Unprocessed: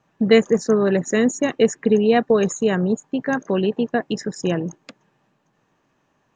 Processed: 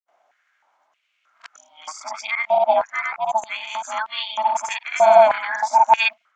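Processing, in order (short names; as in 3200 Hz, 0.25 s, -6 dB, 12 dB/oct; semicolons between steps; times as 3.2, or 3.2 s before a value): whole clip reversed; grains 0.184 s, grains 20/s, spray 0.1 s, pitch spread up and down by 0 st; ring modulator 440 Hz; stepped high-pass 3.2 Hz 700–3200 Hz; gain +5 dB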